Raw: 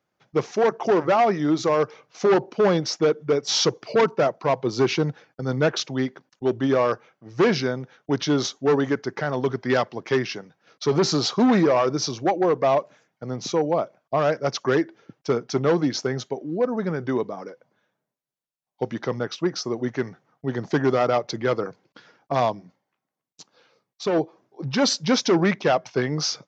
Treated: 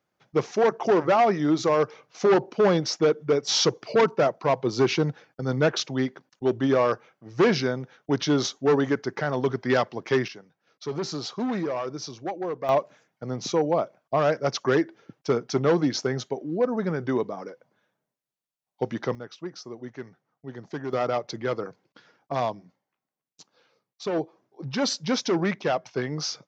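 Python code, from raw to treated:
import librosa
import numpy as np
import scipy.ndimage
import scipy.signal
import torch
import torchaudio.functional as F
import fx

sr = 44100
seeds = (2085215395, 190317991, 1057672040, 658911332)

y = fx.gain(x, sr, db=fx.steps((0.0, -1.0), (10.28, -10.0), (12.69, -1.0), (19.15, -12.0), (20.93, -5.0)))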